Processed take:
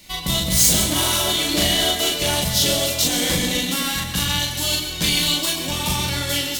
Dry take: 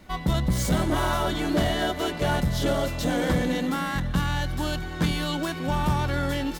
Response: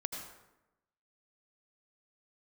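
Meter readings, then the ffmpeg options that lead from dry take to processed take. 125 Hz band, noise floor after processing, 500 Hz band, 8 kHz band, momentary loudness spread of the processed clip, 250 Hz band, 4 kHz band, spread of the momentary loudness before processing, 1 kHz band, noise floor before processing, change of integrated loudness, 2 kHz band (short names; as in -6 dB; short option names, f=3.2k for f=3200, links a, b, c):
-0.5 dB, -29 dBFS, +1.0 dB, +18.5 dB, 7 LU, 0.0 dB, +15.0 dB, 3 LU, 0.0 dB, -34 dBFS, +7.5 dB, +5.0 dB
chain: -filter_complex "[0:a]aexciter=amount=2.8:drive=10:freq=2.2k,aeval=exprs='0.708*(cos(1*acos(clip(val(0)/0.708,-1,1)))-cos(1*PI/2))+0.0355*(cos(7*acos(clip(val(0)/0.708,-1,1)))-cos(7*PI/2))':c=same,asplit=2[a][b];[1:a]atrim=start_sample=2205,adelay=38[c];[b][c]afir=irnorm=-1:irlink=0,volume=-1dB[d];[a][d]amix=inputs=2:normalize=0,volume=-1dB"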